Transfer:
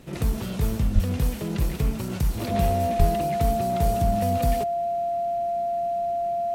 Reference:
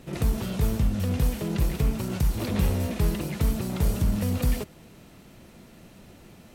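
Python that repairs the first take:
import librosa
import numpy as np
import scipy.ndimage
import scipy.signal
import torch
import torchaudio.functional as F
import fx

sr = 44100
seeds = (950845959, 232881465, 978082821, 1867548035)

y = fx.notch(x, sr, hz=690.0, q=30.0)
y = fx.highpass(y, sr, hz=140.0, slope=24, at=(0.94, 1.06), fade=0.02)
y = fx.highpass(y, sr, hz=140.0, slope=24, at=(2.98, 3.1), fade=0.02)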